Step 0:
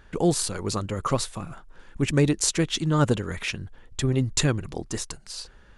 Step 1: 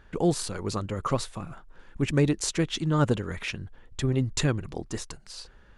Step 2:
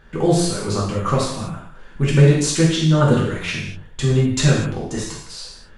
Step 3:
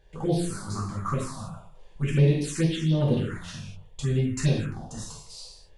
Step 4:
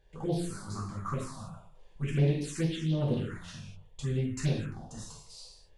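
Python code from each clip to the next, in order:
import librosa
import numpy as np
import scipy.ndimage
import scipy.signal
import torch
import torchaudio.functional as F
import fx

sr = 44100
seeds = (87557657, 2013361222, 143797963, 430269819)

y1 = fx.high_shelf(x, sr, hz=5300.0, db=-7.0)
y1 = F.gain(torch.from_numpy(y1), -2.0).numpy()
y2 = fx.rev_gated(y1, sr, seeds[0], gate_ms=270, shape='falling', drr_db=-5.0)
y2 = F.gain(torch.from_numpy(y2), 2.5).numpy()
y3 = fx.env_phaser(y2, sr, low_hz=220.0, high_hz=1400.0, full_db=-11.0)
y3 = F.gain(torch.from_numpy(y3), -7.5).numpy()
y4 = fx.doppler_dist(y3, sr, depth_ms=0.19)
y4 = F.gain(torch.from_numpy(y4), -6.0).numpy()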